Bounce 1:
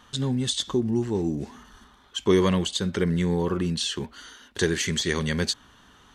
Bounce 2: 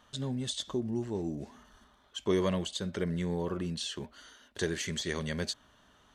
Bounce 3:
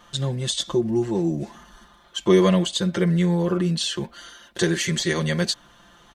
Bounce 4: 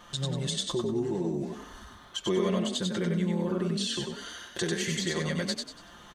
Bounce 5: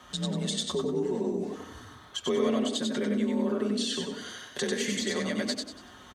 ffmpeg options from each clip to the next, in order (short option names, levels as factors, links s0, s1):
-af "equalizer=f=620:w=5.2:g=11,volume=0.355"
-af "aecho=1:1:5.8:0.9,volume=2.66"
-filter_complex "[0:a]acompressor=threshold=0.0158:ratio=2,asplit=2[s0][s1];[s1]asplit=4[s2][s3][s4][s5];[s2]adelay=95,afreqshift=30,volume=0.708[s6];[s3]adelay=190,afreqshift=60,volume=0.24[s7];[s4]adelay=285,afreqshift=90,volume=0.0822[s8];[s5]adelay=380,afreqshift=120,volume=0.0279[s9];[s6][s7][s8][s9]amix=inputs=4:normalize=0[s10];[s0][s10]amix=inputs=2:normalize=0"
-filter_complex "[0:a]asplit=2[s0][s1];[s1]adelay=87,lowpass=f=820:p=1,volume=0.355,asplit=2[s2][s3];[s3]adelay=87,lowpass=f=820:p=1,volume=0.5,asplit=2[s4][s5];[s5]adelay=87,lowpass=f=820:p=1,volume=0.5,asplit=2[s6][s7];[s7]adelay=87,lowpass=f=820:p=1,volume=0.5,asplit=2[s8][s9];[s9]adelay=87,lowpass=f=820:p=1,volume=0.5,asplit=2[s10][s11];[s11]adelay=87,lowpass=f=820:p=1,volume=0.5[s12];[s0][s2][s4][s6][s8][s10][s12]amix=inputs=7:normalize=0,afreqshift=38"